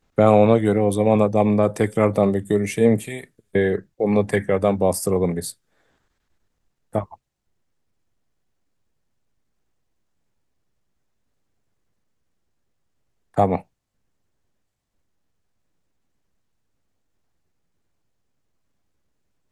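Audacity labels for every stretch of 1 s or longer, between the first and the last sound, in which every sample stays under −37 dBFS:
5.520000	6.940000	silence
7.140000	13.370000	silence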